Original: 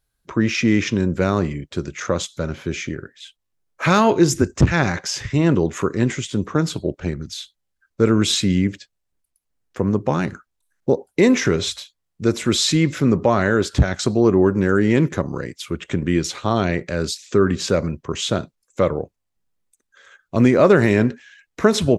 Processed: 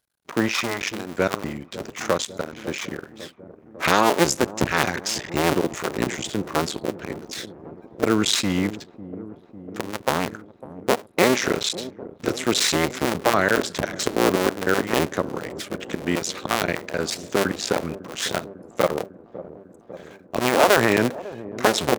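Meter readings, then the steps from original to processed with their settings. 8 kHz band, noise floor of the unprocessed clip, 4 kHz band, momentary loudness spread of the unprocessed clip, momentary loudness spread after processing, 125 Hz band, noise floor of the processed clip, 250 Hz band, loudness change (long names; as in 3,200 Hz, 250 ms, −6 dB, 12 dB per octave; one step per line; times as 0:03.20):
+0.5 dB, −76 dBFS, 0.0 dB, 12 LU, 18 LU, −11.0 dB, −50 dBFS, −7.0 dB, −3.5 dB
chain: sub-harmonics by changed cycles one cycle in 2, muted
high-pass filter 390 Hz 6 dB per octave
on a send: delay with a low-pass on its return 550 ms, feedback 73%, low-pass 630 Hz, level −14.5 dB
on the sum: level +2 dB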